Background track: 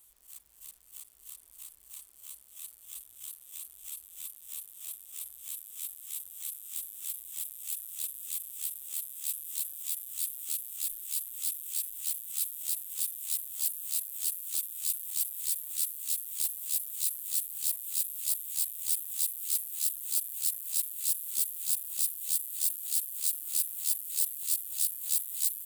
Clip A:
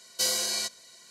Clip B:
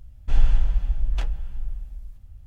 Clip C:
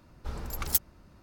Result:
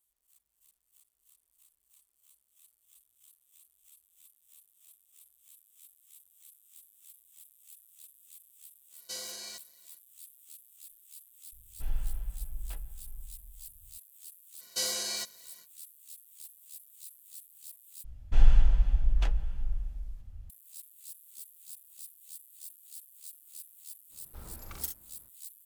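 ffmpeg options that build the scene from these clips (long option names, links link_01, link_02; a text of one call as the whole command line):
ffmpeg -i bed.wav -i cue0.wav -i cue1.wav -i cue2.wav -filter_complex "[1:a]asplit=2[link_01][link_02];[2:a]asplit=2[link_03][link_04];[0:a]volume=-17.5dB[link_05];[link_04]aresample=32000,aresample=44100[link_06];[3:a]aecho=1:1:42|66:0.447|0.376[link_07];[link_05]asplit=2[link_08][link_09];[link_08]atrim=end=18.044[link_10];[link_06]atrim=end=2.46,asetpts=PTS-STARTPTS,volume=-2dB[link_11];[link_09]atrim=start=20.496[link_12];[link_01]atrim=end=1.1,asetpts=PTS-STARTPTS,volume=-13.5dB,afade=type=in:duration=0.05,afade=type=out:start_time=1.05:duration=0.05,adelay=392490S[link_13];[link_03]atrim=end=2.46,asetpts=PTS-STARTPTS,volume=-15dB,afade=type=in:duration=0.004:curve=hsin,afade=type=out:start_time=2.456:duration=0.004:curve=hsin,adelay=11520[link_14];[link_02]atrim=end=1.1,asetpts=PTS-STARTPTS,volume=-5dB,afade=type=in:duration=0.05,afade=type=out:start_time=1.05:duration=0.05,adelay=14570[link_15];[link_07]atrim=end=1.22,asetpts=PTS-STARTPTS,volume=-11.5dB,afade=type=in:duration=0.05,afade=type=out:start_time=1.17:duration=0.05,adelay=24090[link_16];[link_10][link_11]acrossfade=duration=0.004:curve1=hsin:curve2=hsin[link_17];[link_17][link_12]acrossfade=duration=0.004:curve1=hsin:curve2=hsin[link_18];[link_18][link_13][link_14][link_15][link_16]amix=inputs=5:normalize=0" out.wav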